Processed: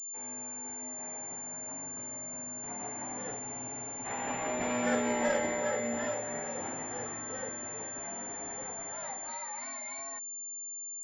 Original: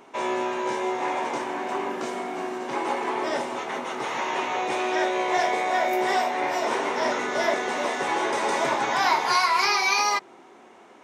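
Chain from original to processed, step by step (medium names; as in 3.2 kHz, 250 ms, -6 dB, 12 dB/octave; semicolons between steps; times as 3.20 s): Doppler pass-by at 4.98 s, 7 m/s, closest 4.3 m; frequency shift -130 Hz; spectral freeze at 3.41 s, 0.65 s; class-D stage that switches slowly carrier 7.2 kHz; trim -5 dB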